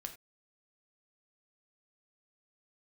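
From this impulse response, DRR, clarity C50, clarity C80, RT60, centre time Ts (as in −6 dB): 4.0 dB, 11.5 dB, 16.0 dB, non-exponential decay, 10 ms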